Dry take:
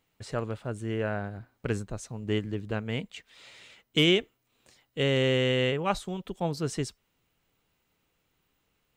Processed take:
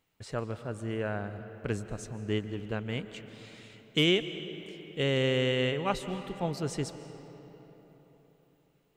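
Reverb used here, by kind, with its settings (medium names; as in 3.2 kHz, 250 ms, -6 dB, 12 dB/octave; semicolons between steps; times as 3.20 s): algorithmic reverb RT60 4.1 s, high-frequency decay 0.6×, pre-delay 105 ms, DRR 11 dB; trim -2.5 dB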